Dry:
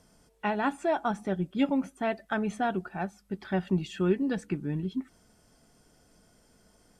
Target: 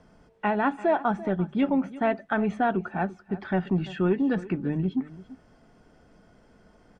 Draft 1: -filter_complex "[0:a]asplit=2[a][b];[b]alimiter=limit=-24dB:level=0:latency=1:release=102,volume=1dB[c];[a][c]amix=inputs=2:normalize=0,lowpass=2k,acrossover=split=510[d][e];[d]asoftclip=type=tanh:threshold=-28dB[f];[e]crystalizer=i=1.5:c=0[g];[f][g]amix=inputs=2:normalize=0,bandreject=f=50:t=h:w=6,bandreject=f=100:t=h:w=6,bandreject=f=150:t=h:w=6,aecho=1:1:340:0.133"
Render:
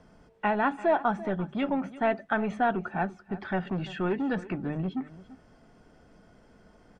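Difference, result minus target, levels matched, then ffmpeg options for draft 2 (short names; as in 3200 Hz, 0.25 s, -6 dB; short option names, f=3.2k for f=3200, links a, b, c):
soft clip: distortion +13 dB
-filter_complex "[0:a]asplit=2[a][b];[b]alimiter=limit=-24dB:level=0:latency=1:release=102,volume=1dB[c];[a][c]amix=inputs=2:normalize=0,lowpass=2k,acrossover=split=510[d][e];[d]asoftclip=type=tanh:threshold=-16.5dB[f];[e]crystalizer=i=1.5:c=0[g];[f][g]amix=inputs=2:normalize=0,bandreject=f=50:t=h:w=6,bandreject=f=100:t=h:w=6,bandreject=f=150:t=h:w=6,aecho=1:1:340:0.133"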